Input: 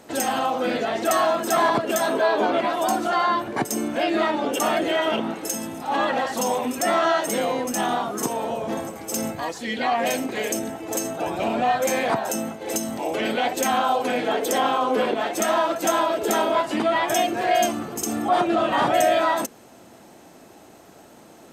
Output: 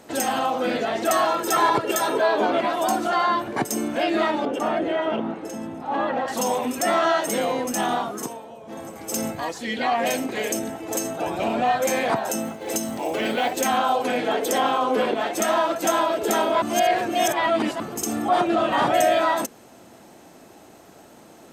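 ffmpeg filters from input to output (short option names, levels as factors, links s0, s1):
-filter_complex "[0:a]asettb=1/sr,asplit=3[s0][s1][s2];[s0]atrim=end=1.254[s3];[s1]atrim=start=1.25:end=2.18,asetpts=PTS-STARTPTS,afade=t=in:d=0.004:c=qsin,afade=t=out:st=0.926:d=0.004:c=qsin,aecho=1:1:2.2:0.6,atrim=end_sample=41013[s4];[s2]atrim=start=2.176[s5];[s3][s4]acrossfade=d=0.004:c1=hsin:c2=qsin[s6];[s6][s5]acrossfade=d=0.004:c1=qsin:c2=hsin,asettb=1/sr,asplit=3[s7][s8][s9];[s7]atrim=end=4.454[s10];[s8]atrim=start=4.45:end=6.28,asetpts=PTS-STARTPTS,afade=t=in:d=0.004:c=qsin,afade=t=out:st=1.826:d=0.004:c=qsin,lowpass=f=1200:p=1[s11];[s9]atrim=start=6.276[s12];[s10][s11]acrossfade=d=0.004:c1=hsin:c2=qsin[s13];[s13][s12]acrossfade=d=0.004:c1=qsin:c2=hsin,asettb=1/sr,asplit=3[s14][s15][s16];[s14]atrim=end=12.444[s17];[s15]atrim=start=12.44:end=13.69,asetpts=PTS-STARTPTS,afade=t=in:d=0.004:c=qsin,afade=t=out:st=1.246:d=0.004:c=qsin,acrusher=bits=7:mode=log:mix=0:aa=0.000001[s18];[s16]atrim=start=13.686[s19];[s17][s18]acrossfade=d=0.004:c1=hsin:c2=qsin[s20];[s20][s19]acrossfade=d=0.004:c1=qsin:c2=hsin,asplit=5[s21][s22][s23][s24][s25];[s21]atrim=end=8.43,asetpts=PTS-STARTPTS,afade=t=out:st=7.99:d=0.44:silence=0.199526[s26];[s22]atrim=start=8.43:end=8.65,asetpts=PTS-STARTPTS,volume=0.2[s27];[s23]atrim=start=8.65:end=16.622,asetpts=PTS-STARTPTS,afade=t=in:d=0.44:silence=0.199526[s28];[s24]atrim=start=16.618:end=17.802,asetpts=PTS-STARTPTS,areverse[s29];[s25]atrim=start=17.798[s30];[s26][s27][s28]concat=n=3:v=0:a=1[s31];[s31][s29]acrossfade=d=0.004:c1=hsin:c2=hsin[s32];[s32][s30]acrossfade=d=0.004:c1=hsin:c2=hsin"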